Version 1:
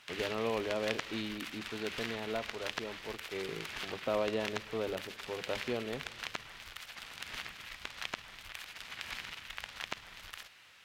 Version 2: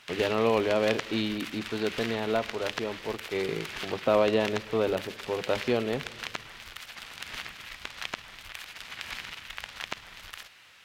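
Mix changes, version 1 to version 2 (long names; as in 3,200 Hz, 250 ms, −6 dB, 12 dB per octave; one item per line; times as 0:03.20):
speech +9.5 dB
background +4.0 dB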